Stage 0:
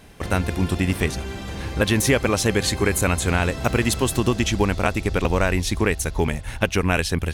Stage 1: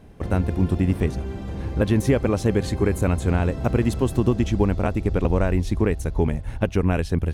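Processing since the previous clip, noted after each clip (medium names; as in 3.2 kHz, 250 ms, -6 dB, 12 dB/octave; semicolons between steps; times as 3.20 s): tilt shelf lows +8 dB, about 1.1 kHz; trim -6 dB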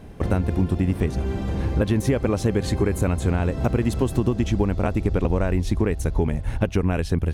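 compression 3:1, threshold -24 dBFS, peak gain reduction 8.5 dB; trim +5.5 dB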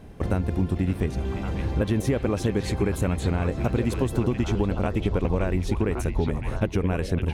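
repeats whose band climbs or falls 559 ms, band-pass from 2.8 kHz, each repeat -1.4 oct, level -1 dB; trim -3 dB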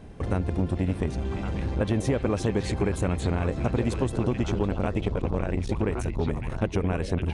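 resampled via 22.05 kHz; transformer saturation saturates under 350 Hz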